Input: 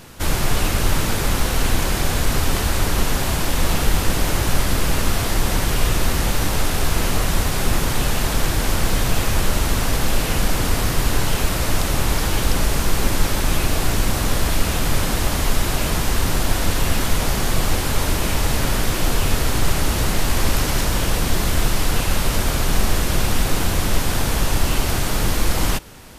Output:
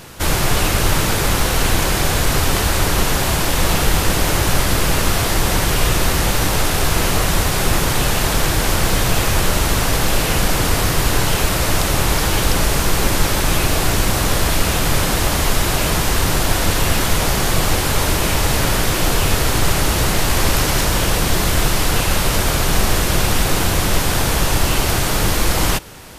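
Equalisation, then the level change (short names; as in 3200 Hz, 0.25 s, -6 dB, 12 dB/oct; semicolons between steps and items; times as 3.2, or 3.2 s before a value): low shelf 61 Hz -6 dB; bell 240 Hz -4.5 dB 0.39 oct; +5.0 dB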